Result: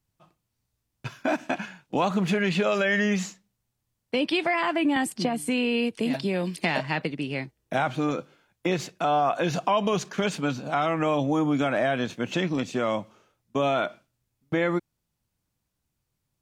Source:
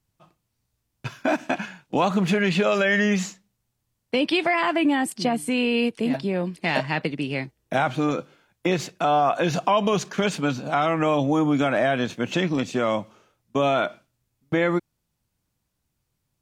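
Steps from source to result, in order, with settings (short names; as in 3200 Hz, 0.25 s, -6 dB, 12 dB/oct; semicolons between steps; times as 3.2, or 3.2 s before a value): 4.96–7.04 three-band squash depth 100%; gain -3 dB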